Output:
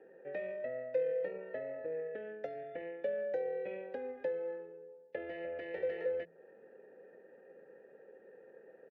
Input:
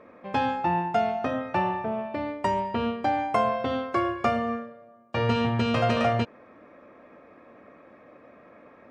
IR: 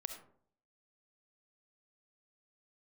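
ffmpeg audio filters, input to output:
-filter_complex "[0:a]asetrate=32097,aresample=44100,atempo=1.37395,acrossover=split=280|1100[link_01][link_02][link_03];[link_01]acompressor=threshold=-41dB:ratio=4[link_04];[link_02]acompressor=threshold=-38dB:ratio=4[link_05];[link_03]acompressor=threshold=-46dB:ratio=4[link_06];[link_04][link_05][link_06]amix=inputs=3:normalize=0,asplit=3[link_07][link_08][link_09];[link_07]bandpass=frequency=530:width_type=q:width=8,volume=0dB[link_10];[link_08]bandpass=frequency=1840:width_type=q:width=8,volume=-6dB[link_11];[link_09]bandpass=frequency=2480:width_type=q:width=8,volume=-9dB[link_12];[link_10][link_11][link_12]amix=inputs=3:normalize=0,bandreject=frequency=56.04:width_type=h:width=4,bandreject=frequency=112.08:width_type=h:width=4,bandreject=frequency=168.12:width_type=h:width=4,bandreject=frequency=224.16:width_type=h:width=4,volume=5.5dB"

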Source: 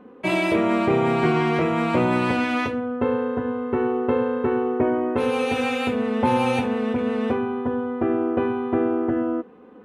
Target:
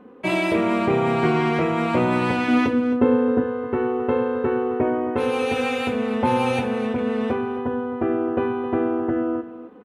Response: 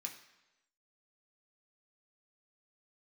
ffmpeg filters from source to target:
-filter_complex "[0:a]asettb=1/sr,asplit=3[link_01][link_02][link_03];[link_01]atrim=end=2.484[link_04];[link_02]atrim=start=2.48:end=3.44,asetpts=PTS-STARTPTS,afade=type=in:duration=0.004:curve=qsin,afade=type=out:start_time=0.956:duration=0.004:curve=qsin,equalizer=frequency=280:width=1.2:gain=9[link_05];[link_03]atrim=start=3.436[link_06];[link_04][link_05]acrossfade=duration=0.004:curve1=hsin:curve2=qsin[link_07];[link_07][link_06]acrossfade=duration=0.004:curve1=qsin:curve2=hsin,aecho=1:1:266:0.2"

